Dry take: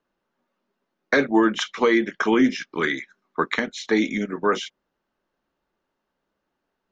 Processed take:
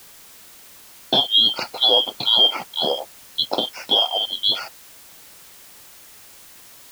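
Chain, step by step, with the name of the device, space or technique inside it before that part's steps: split-band scrambled radio (four frequency bands reordered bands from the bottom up 2413; band-pass 380–2900 Hz; white noise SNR 22 dB); trim +6 dB

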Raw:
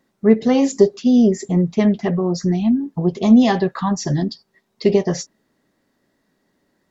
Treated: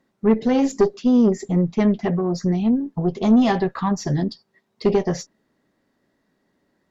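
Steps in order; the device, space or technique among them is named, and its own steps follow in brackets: tube preamp driven hard (valve stage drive 9 dB, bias 0.4; treble shelf 5 kHz -7 dB)

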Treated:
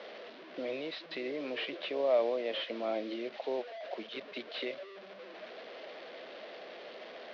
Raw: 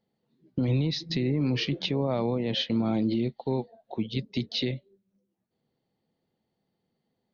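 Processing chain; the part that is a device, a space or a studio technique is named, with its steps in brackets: digital answering machine (band-pass 330–3200 Hz; one-bit delta coder 32 kbps, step -39.5 dBFS; cabinet simulation 470–4000 Hz, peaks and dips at 610 Hz +9 dB, 870 Hz -9 dB, 1.3 kHz -3 dB)

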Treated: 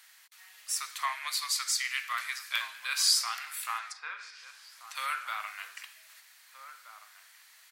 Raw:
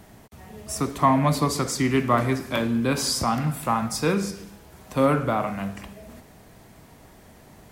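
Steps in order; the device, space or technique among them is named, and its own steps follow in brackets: 1.13–2.50 s: high-pass 1.1 kHz 6 dB/octave; headphones lying on a table (high-pass 1.5 kHz 24 dB/octave; peaking EQ 4.3 kHz +4.5 dB 0.32 oct); 3.78–4.95 s: low-pass that closes with the level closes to 1.4 kHz, closed at -29.5 dBFS; echo from a far wall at 270 m, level -10 dB

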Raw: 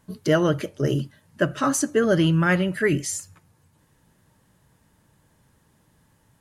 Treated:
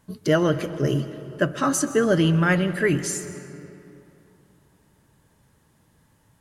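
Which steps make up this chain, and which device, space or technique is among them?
saturated reverb return (on a send at -11 dB: reverberation RT60 2.8 s, pre-delay 119 ms + saturation -15 dBFS, distortion -15 dB)

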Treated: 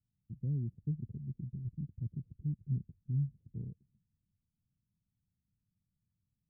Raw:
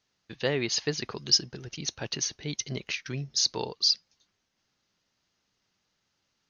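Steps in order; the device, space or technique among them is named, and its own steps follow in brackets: the neighbour's flat through the wall (low-pass 180 Hz 24 dB/octave; peaking EQ 99 Hz +3 dB); trim +2.5 dB

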